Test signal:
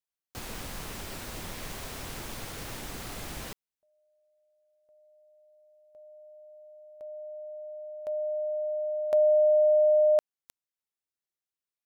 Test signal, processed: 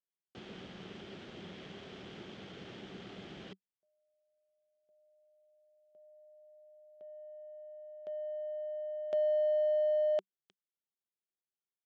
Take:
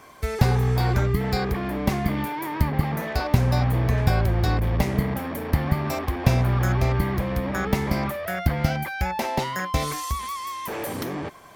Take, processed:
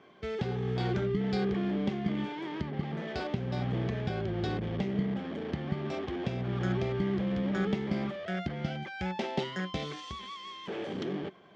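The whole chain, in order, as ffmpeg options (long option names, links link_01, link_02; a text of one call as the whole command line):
ffmpeg -i in.wav -af "alimiter=limit=-11.5dB:level=0:latency=1:release=398,adynamicsmooth=sensitivity=5:basefreq=2800,highpass=120,equalizer=frequency=190:width_type=q:width=4:gain=10,equalizer=frequency=380:width_type=q:width=4:gain=9,equalizer=frequency=1000:width_type=q:width=4:gain=-7,equalizer=frequency=3200:width_type=q:width=4:gain=10,lowpass=frequency=7000:width=0.5412,lowpass=frequency=7000:width=1.3066,volume=-8.5dB" out.wav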